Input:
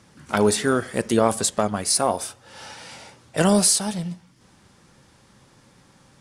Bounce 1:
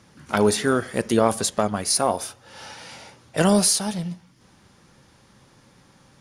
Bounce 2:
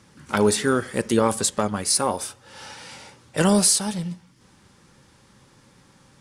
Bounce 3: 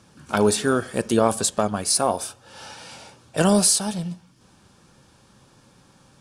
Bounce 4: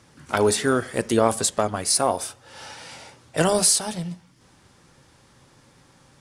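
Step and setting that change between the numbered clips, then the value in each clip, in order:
notch, frequency: 8000, 680, 2000, 200 Hz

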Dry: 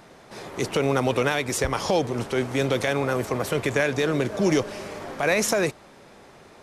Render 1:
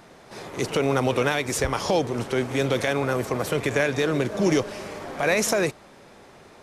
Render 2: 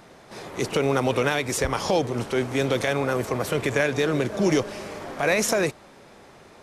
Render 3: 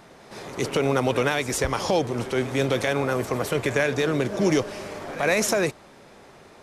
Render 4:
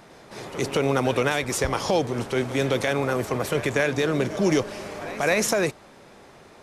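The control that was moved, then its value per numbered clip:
pre-echo, time: 54, 34, 112, 214 ms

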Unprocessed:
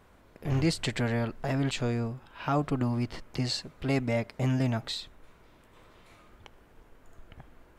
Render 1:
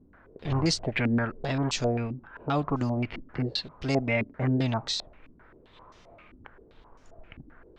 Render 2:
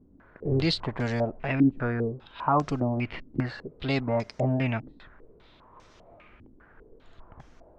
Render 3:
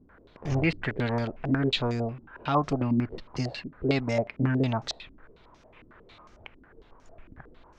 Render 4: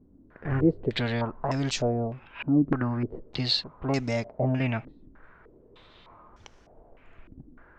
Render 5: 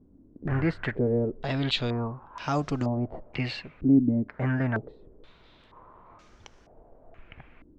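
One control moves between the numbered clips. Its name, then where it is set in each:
stepped low-pass, rate: 7.6, 5, 11, 3.3, 2.1 Hz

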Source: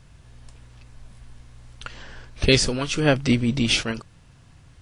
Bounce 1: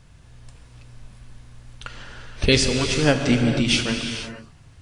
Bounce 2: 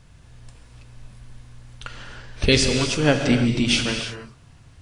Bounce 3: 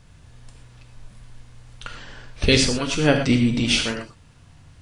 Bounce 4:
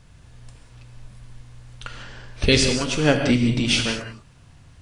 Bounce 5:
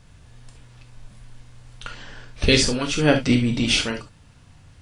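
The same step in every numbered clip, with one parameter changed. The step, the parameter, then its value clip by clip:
non-linear reverb, gate: 510, 350, 140, 220, 90 ms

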